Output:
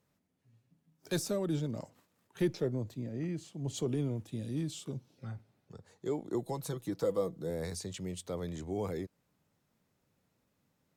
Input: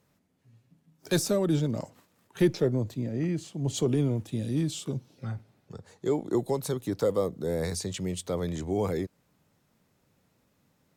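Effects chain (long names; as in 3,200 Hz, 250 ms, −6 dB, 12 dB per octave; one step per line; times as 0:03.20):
0:06.45–0:07.50: comb filter 6.1 ms, depth 51%
level −7.5 dB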